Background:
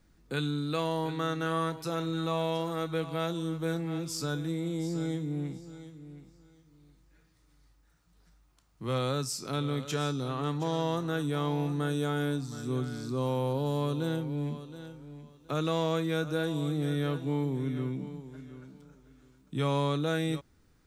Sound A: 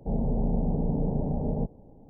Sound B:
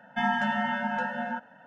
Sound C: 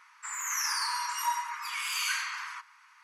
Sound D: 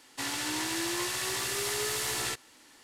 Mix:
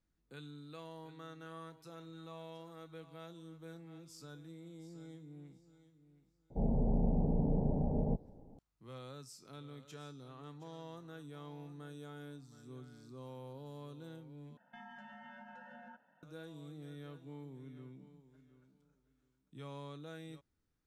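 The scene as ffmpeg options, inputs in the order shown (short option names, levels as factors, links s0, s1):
-filter_complex "[0:a]volume=0.112[s0];[2:a]acompressor=threshold=0.0251:ratio=6:attack=3.2:release=140:knee=1:detection=peak[s1];[s0]asplit=2[s2][s3];[s2]atrim=end=14.574[s4];[s1]atrim=end=1.66,asetpts=PTS-STARTPTS,volume=0.133[s5];[s3]atrim=start=16.226[s6];[1:a]atrim=end=2.09,asetpts=PTS-STARTPTS,volume=0.562,afade=t=in:d=0.004:c=hsin,afade=t=out:st=2.086:d=0.004:c=hsin,adelay=286650S[s7];[s4][s5]acrossfade=d=0.004:c1=hsin:c2=hsin[s8];[s8][s6]acrossfade=d=0.004:c1=hsin:c2=hsin[s9];[s9][s7]amix=inputs=2:normalize=0"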